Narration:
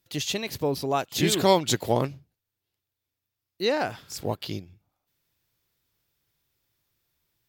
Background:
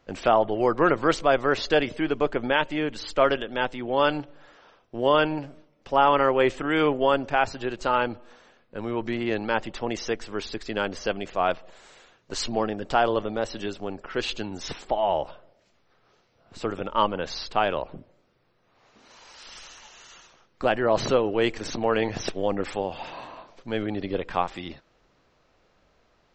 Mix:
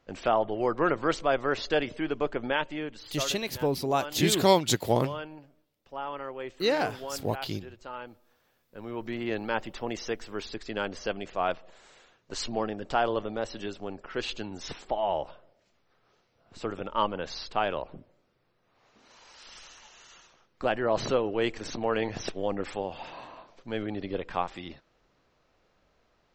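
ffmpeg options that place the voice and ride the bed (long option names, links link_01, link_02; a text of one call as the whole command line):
ffmpeg -i stem1.wav -i stem2.wav -filter_complex "[0:a]adelay=3000,volume=-1dB[link_01];[1:a]volume=7.5dB,afade=type=out:start_time=2.52:duration=0.79:silence=0.251189,afade=type=in:start_time=8.4:duration=0.9:silence=0.237137[link_02];[link_01][link_02]amix=inputs=2:normalize=0" out.wav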